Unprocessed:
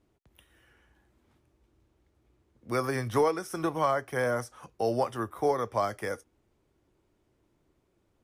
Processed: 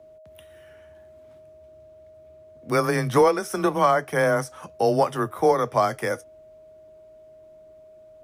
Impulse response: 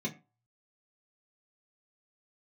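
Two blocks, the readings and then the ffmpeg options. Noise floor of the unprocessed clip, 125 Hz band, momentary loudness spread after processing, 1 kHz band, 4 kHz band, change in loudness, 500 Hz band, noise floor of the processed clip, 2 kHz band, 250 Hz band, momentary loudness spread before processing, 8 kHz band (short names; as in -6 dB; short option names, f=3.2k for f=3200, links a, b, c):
-73 dBFS, +7.0 dB, 8 LU, +7.5 dB, +7.5 dB, +7.5 dB, +7.5 dB, -49 dBFS, +8.0 dB, +7.0 dB, 8 LU, +7.5 dB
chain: -af "aeval=exprs='val(0)+0.002*sin(2*PI*610*n/s)':c=same,afreqshift=18,volume=7.5dB"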